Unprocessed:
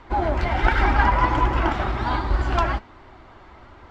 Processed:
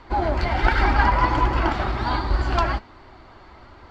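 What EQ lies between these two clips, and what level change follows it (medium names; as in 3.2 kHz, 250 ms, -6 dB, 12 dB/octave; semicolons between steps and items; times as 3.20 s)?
peaking EQ 4.5 kHz +9 dB 0.23 oct; 0.0 dB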